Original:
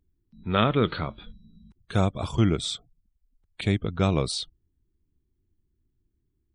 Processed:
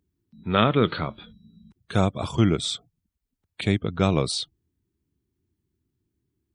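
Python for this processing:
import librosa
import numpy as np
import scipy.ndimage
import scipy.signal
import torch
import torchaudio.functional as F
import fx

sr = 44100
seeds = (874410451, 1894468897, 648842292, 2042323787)

y = scipy.signal.sosfilt(scipy.signal.butter(2, 94.0, 'highpass', fs=sr, output='sos'), x)
y = y * 10.0 ** (2.5 / 20.0)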